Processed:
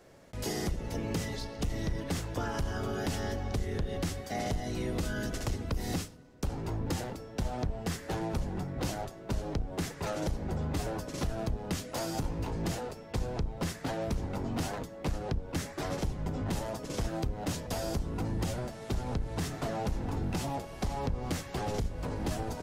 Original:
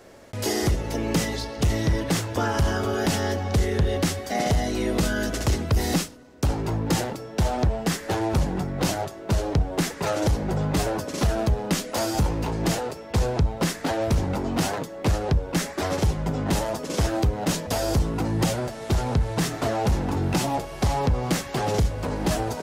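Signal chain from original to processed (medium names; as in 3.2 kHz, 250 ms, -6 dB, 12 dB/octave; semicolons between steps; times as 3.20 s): octave divider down 1 oct, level 0 dB; compression, threshold -19 dBFS, peak gain reduction 7 dB; on a send: reverberation RT60 0.80 s, pre-delay 4 ms, DRR 22 dB; on the sum: trim -9 dB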